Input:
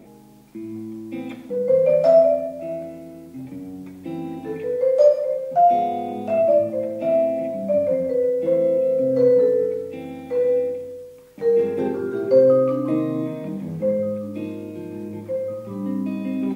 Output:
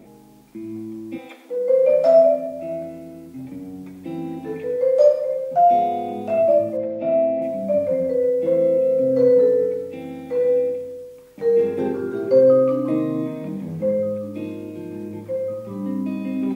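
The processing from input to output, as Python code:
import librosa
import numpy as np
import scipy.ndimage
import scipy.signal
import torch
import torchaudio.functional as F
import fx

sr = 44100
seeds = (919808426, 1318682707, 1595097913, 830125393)

y = fx.highpass(x, sr, hz=fx.line((1.17, 480.0), (2.5, 130.0)), slope=24, at=(1.17, 2.5), fade=0.02)
y = fx.air_absorb(y, sr, metres=180.0, at=(6.77, 7.42))
y = y + 10.0 ** (-15.5 / 20.0) * np.pad(y, (int(103 * sr / 1000.0), 0))[:len(y)]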